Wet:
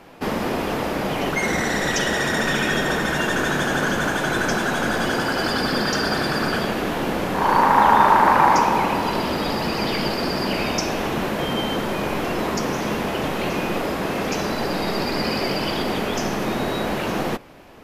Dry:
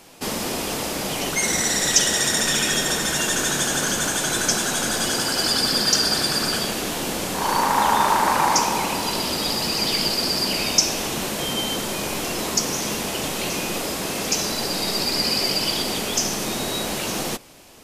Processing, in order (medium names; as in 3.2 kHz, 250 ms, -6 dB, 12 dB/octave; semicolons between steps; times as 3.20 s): FFT filter 1.7 kHz 0 dB, 8.3 kHz -20 dB, 13 kHz -14 dB; trim +4.5 dB